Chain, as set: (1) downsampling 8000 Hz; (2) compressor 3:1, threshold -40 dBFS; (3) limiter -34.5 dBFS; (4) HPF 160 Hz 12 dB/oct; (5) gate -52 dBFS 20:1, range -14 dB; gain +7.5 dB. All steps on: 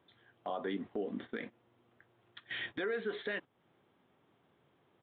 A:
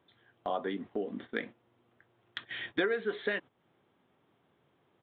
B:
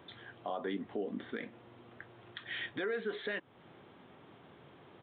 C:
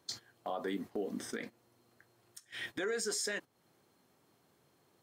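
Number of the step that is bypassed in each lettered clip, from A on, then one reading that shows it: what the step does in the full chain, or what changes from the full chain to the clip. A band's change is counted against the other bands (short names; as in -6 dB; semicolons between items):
3, crest factor change +6.0 dB; 5, momentary loudness spread change +9 LU; 1, 4 kHz band +4.5 dB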